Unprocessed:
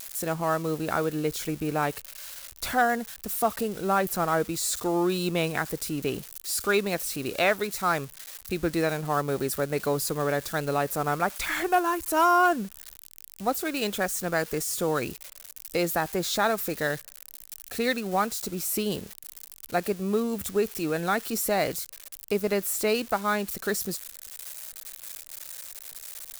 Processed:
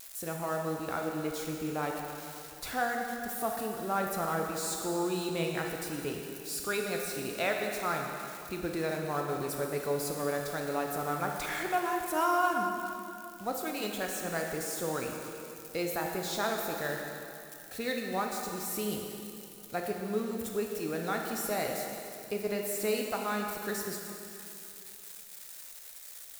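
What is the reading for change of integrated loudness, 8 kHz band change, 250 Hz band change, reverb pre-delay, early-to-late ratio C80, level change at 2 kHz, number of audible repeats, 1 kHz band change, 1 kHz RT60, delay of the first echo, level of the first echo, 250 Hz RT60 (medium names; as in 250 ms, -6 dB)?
-6.5 dB, -6.0 dB, -6.0 dB, 7 ms, 3.5 dB, -6.0 dB, no echo, -6.0 dB, 2.8 s, no echo, no echo, 2.8 s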